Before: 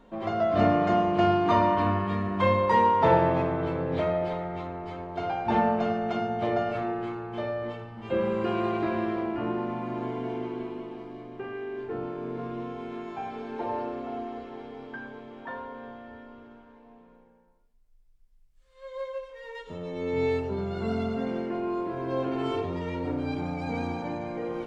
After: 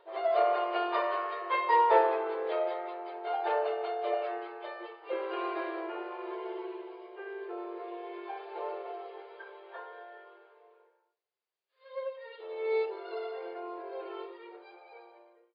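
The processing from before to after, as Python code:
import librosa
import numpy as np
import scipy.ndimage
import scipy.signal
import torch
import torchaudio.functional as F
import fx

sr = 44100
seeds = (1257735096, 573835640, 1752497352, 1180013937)

y = fx.fade_out_tail(x, sr, length_s=4.85)
y = fx.stretch_vocoder_free(y, sr, factor=0.63)
y = fx.brickwall_bandpass(y, sr, low_hz=340.0, high_hz=5000.0)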